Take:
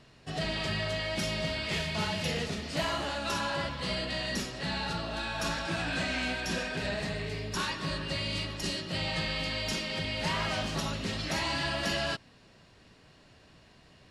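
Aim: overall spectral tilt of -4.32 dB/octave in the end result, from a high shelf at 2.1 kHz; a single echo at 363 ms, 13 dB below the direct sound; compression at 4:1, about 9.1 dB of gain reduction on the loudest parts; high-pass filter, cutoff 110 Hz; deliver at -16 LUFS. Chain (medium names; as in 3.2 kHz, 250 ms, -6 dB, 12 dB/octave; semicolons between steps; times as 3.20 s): high-pass 110 Hz; treble shelf 2.1 kHz -4.5 dB; compression 4:1, threshold -40 dBFS; delay 363 ms -13 dB; trim +25.5 dB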